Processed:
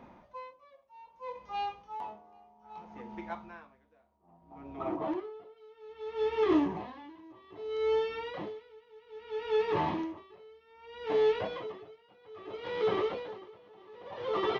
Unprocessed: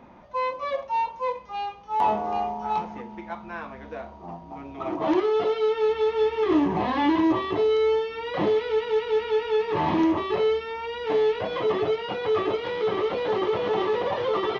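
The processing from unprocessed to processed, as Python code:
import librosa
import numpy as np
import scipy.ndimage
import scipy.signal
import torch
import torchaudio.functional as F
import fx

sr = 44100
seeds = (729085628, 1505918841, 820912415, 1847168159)

y = fx.high_shelf(x, sr, hz=2800.0, db=-11.0, at=(4.16, 5.56), fade=0.02)
y = y * 10.0 ** (-28 * (0.5 - 0.5 * np.cos(2.0 * np.pi * 0.62 * np.arange(len(y)) / sr)) / 20.0)
y = y * librosa.db_to_amplitude(-3.5)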